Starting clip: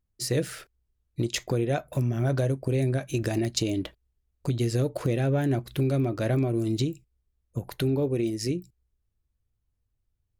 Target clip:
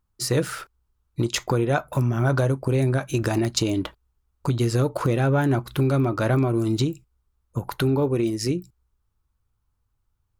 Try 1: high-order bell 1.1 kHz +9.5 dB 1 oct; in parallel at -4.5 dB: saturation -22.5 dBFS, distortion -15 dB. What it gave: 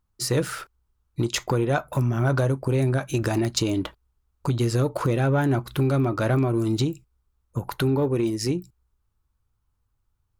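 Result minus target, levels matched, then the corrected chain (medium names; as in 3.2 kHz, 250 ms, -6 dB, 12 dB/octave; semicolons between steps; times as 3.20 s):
saturation: distortion +16 dB
high-order bell 1.1 kHz +9.5 dB 1 oct; in parallel at -4.5 dB: saturation -12 dBFS, distortion -30 dB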